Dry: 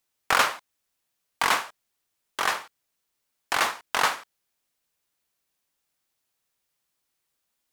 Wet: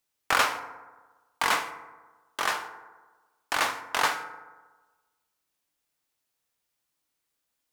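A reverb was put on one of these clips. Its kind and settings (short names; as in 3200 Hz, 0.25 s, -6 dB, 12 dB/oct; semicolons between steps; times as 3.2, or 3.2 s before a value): FDN reverb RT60 1.3 s, low-frequency decay 0.95×, high-frequency decay 0.4×, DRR 8 dB; gain -2.5 dB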